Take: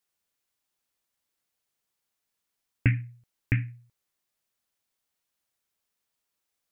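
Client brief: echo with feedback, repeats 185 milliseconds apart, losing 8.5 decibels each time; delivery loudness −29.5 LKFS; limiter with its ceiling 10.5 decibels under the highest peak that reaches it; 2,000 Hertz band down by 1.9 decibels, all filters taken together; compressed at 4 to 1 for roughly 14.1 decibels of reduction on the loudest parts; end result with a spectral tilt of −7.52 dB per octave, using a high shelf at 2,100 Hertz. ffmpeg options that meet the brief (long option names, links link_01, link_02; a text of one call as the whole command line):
ffmpeg -i in.wav -af "equalizer=frequency=2000:width_type=o:gain=-6,highshelf=frequency=2100:gain=6.5,acompressor=threshold=-35dB:ratio=4,alimiter=level_in=5.5dB:limit=-24dB:level=0:latency=1,volume=-5.5dB,aecho=1:1:185|370|555|740:0.376|0.143|0.0543|0.0206,volume=17dB" out.wav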